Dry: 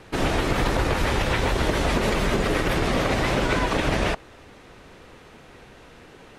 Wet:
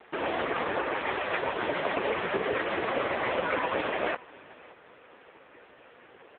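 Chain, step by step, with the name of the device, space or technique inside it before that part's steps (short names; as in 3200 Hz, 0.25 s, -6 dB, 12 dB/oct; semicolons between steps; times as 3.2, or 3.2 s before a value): satellite phone (BPF 380–3200 Hz; echo 0.569 s -22 dB; gain +1 dB; AMR-NB 5.15 kbps 8000 Hz)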